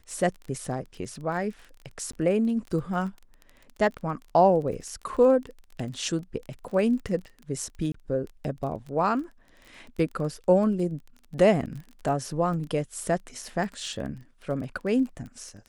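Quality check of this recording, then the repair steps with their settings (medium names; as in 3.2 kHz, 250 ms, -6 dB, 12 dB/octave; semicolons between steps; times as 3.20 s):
crackle 21 per s -35 dBFS
2.12–2.13 s: dropout 14 ms
7.92–7.94 s: dropout 24 ms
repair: de-click; interpolate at 2.12 s, 14 ms; interpolate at 7.92 s, 24 ms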